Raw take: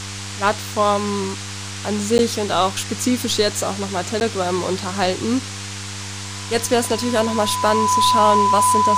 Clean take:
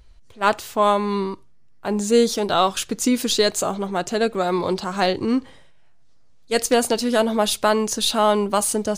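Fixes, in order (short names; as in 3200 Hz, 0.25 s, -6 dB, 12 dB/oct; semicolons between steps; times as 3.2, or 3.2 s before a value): de-hum 99.1 Hz, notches 5; notch 1000 Hz, Q 30; interpolate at 2.18/4.2, 9.9 ms; noise print and reduce 16 dB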